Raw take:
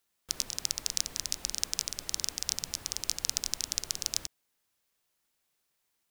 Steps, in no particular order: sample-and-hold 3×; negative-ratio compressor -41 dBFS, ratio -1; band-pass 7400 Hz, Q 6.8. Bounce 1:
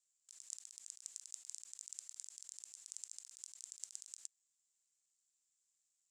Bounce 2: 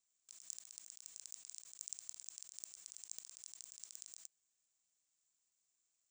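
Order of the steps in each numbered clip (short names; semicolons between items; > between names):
sample-and-hold > negative-ratio compressor > band-pass; negative-ratio compressor > band-pass > sample-and-hold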